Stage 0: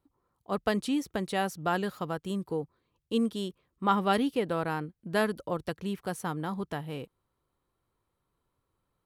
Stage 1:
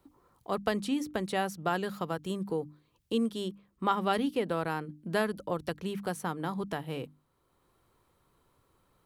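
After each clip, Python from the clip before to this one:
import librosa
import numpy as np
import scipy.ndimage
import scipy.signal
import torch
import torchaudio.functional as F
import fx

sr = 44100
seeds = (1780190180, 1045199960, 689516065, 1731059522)

y = fx.hum_notches(x, sr, base_hz=50, count=6)
y = fx.band_squash(y, sr, depth_pct=40)
y = F.gain(torch.from_numpy(y), -1.0).numpy()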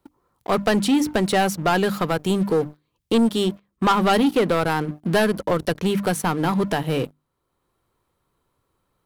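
y = fx.leveller(x, sr, passes=3)
y = F.gain(torch.from_numpy(y), 3.5).numpy()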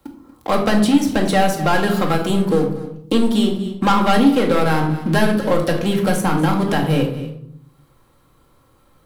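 y = x + 10.0 ** (-16.5 / 20.0) * np.pad(x, (int(237 * sr / 1000.0), 0))[:len(x)]
y = fx.room_shoebox(y, sr, seeds[0], volume_m3=780.0, walls='furnished', distance_m=2.2)
y = fx.band_squash(y, sr, depth_pct=40)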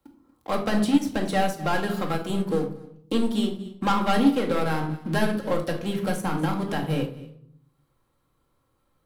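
y = fx.upward_expand(x, sr, threshold_db=-28.0, expansion=1.5)
y = F.gain(torch.from_numpy(y), -5.0).numpy()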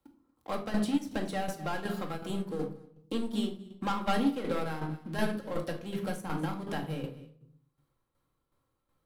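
y = fx.tremolo_shape(x, sr, shape='saw_down', hz=2.7, depth_pct=60)
y = F.gain(torch.from_numpy(y), -5.5).numpy()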